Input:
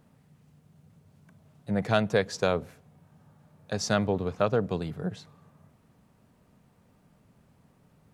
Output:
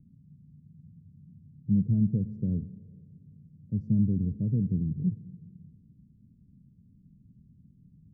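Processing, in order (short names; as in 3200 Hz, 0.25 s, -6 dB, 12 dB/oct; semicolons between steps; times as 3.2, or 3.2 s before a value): inverse Chebyshev low-pass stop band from 790 Hz, stop band 60 dB; Schroeder reverb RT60 2.2 s, combs from 29 ms, DRR 16.5 dB; gain +6 dB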